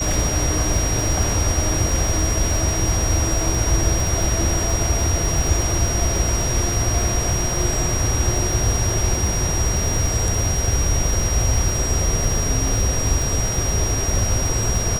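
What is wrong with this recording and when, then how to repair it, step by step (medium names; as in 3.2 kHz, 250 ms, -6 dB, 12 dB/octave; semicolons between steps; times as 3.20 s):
crackle 31 per s -22 dBFS
whine 5.7 kHz -24 dBFS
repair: de-click; band-stop 5.7 kHz, Q 30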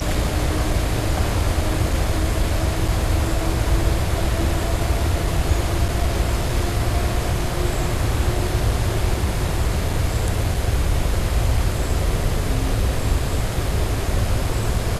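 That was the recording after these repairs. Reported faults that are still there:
nothing left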